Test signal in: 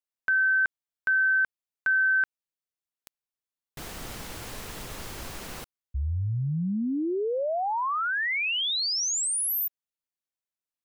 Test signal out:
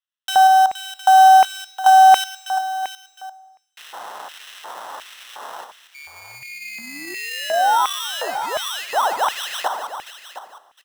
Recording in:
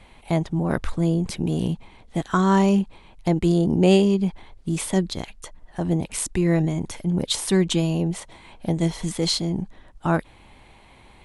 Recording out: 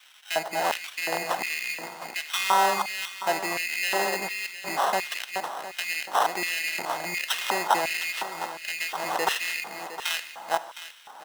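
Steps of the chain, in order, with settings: chunks repeated in reverse 235 ms, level -10 dB; in parallel at -2 dB: compression, threshold -27 dBFS; on the sum: bass shelf 150 Hz +4.5 dB; sample-rate reducer 2.3 kHz, jitter 0%; peak limiter -12 dBFS; dynamic bell 660 Hz, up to +4 dB, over -33 dBFS, Q 1.1; on a send: delay 711 ms -12.5 dB; on the sum: Schroeder reverb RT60 1.6 s, combs from 25 ms, DRR 13.5 dB; LFO high-pass square 1.4 Hz 830–2400 Hz; trim -1 dB

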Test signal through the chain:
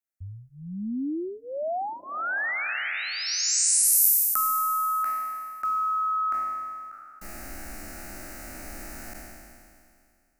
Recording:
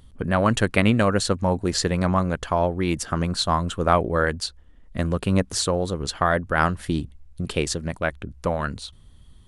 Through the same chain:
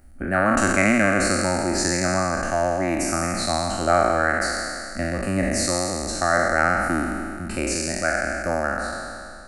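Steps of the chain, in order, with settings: spectral sustain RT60 2.30 s; static phaser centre 680 Hz, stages 8

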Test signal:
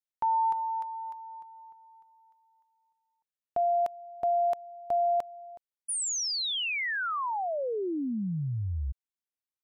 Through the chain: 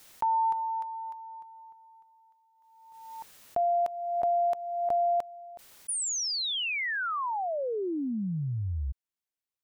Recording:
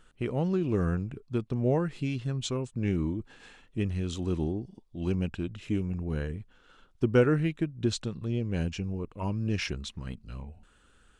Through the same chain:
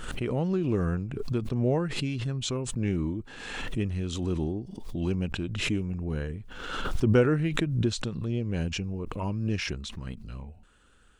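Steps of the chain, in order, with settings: swell ahead of each attack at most 40 dB/s

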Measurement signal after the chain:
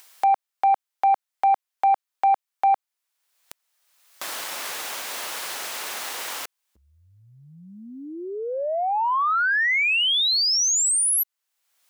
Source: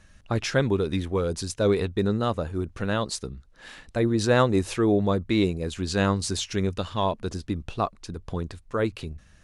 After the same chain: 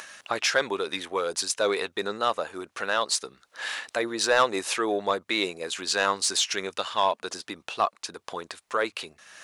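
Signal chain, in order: in parallel at +0.5 dB: upward compressor, threshold -24 dBFS; on the sum: high-pass 730 Hz 12 dB/octave; saturation -10.5 dBFS

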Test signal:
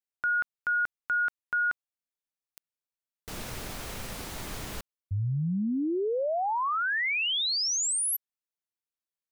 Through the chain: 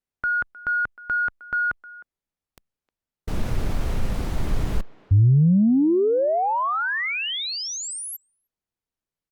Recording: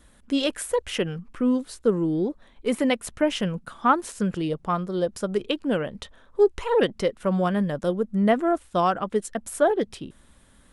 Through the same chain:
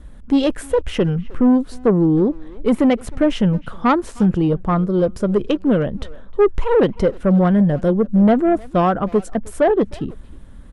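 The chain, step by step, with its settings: tilt EQ -3 dB/octave; saturation -13.5 dBFS; speakerphone echo 310 ms, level -19 dB; trim +5.5 dB; Opus 96 kbps 48 kHz

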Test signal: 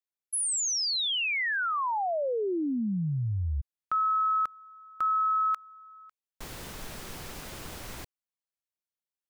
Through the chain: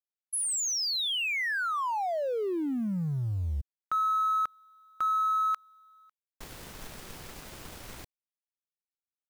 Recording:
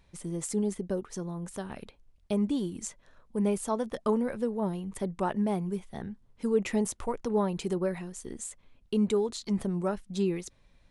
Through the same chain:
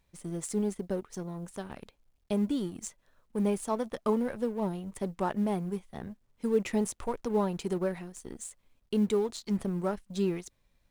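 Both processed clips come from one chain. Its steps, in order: companding laws mixed up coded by A

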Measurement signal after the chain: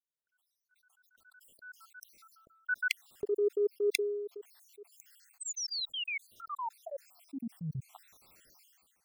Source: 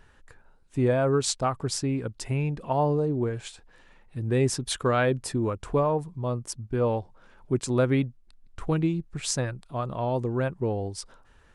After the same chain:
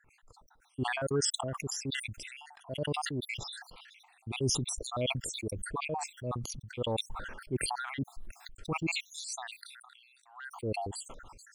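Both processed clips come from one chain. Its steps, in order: random holes in the spectrogram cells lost 71%; transient shaper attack -5 dB, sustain +1 dB; decay stretcher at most 33 dB/s; trim -4.5 dB

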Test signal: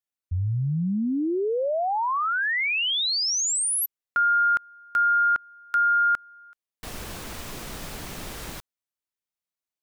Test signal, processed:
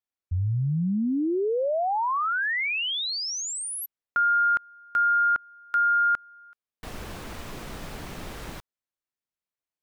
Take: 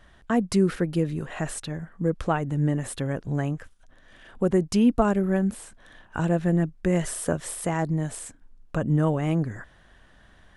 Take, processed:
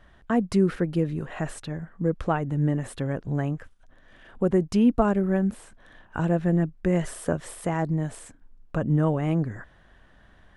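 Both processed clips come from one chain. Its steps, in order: treble shelf 3.9 kHz -9 dB

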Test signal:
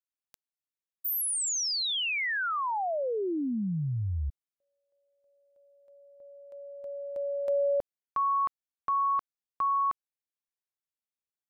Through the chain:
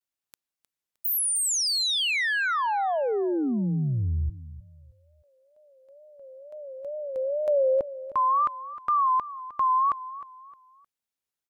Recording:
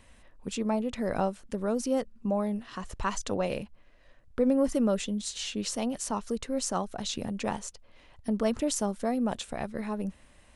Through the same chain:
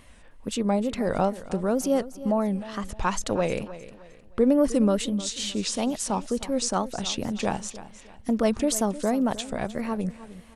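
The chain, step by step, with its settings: wow and flutter 130 cents; feedback delay 309 ms, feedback 33%, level -15.5 dB; trim +4.5 dB

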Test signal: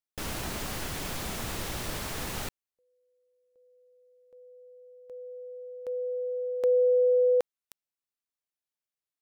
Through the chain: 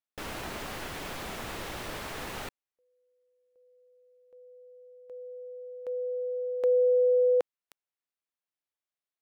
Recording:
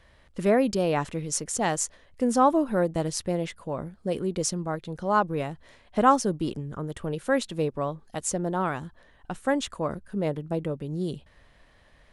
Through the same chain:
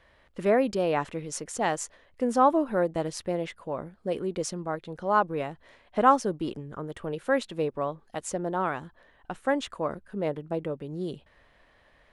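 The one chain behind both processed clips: tone controls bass -7 dB, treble -8 dB

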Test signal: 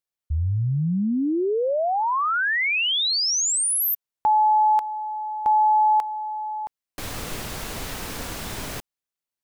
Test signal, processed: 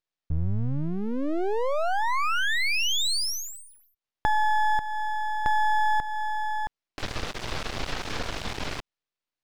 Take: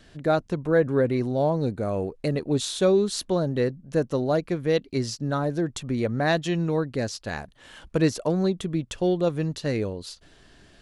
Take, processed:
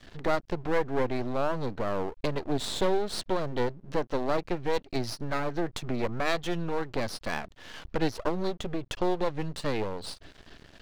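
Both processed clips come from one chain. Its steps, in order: compression 2:1, threshold -30 dBFS; dynamic bell 200 Hz, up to -4 dB, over -44 dBFS, Q 1.3; low-pass 5.2 kHz 24 dB/octave; half-wave rectifier; trim +6.5 dB

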